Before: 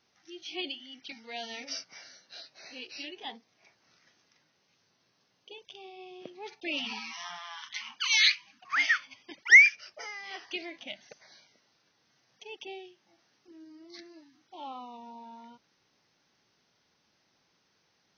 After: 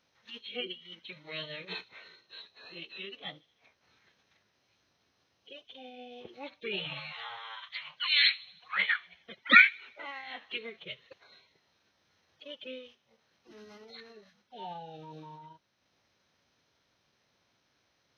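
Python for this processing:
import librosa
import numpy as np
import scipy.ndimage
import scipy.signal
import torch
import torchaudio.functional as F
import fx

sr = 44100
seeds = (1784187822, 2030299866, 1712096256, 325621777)

y = fx.pitch_keep_formants(x, sr, semitones=-7.0)
y = fx.transient(y, sr, attack_db=0, sustain_db=-4)
y = fx.echo_wet_highpass(y, sr, ms=77, feedback_pct=58, hz=4200.0, wet_db=-17.5)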